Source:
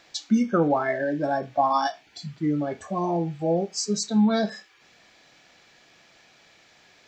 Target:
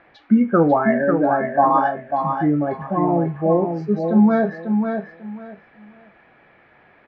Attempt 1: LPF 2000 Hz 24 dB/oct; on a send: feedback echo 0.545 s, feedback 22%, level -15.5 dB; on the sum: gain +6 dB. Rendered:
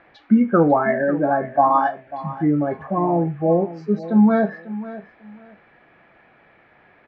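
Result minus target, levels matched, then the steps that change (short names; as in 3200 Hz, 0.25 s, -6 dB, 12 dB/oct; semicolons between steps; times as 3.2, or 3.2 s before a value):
echo-to-direct -9.5 dB
change: feedback echo 0.545 s, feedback 22%, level -6 dB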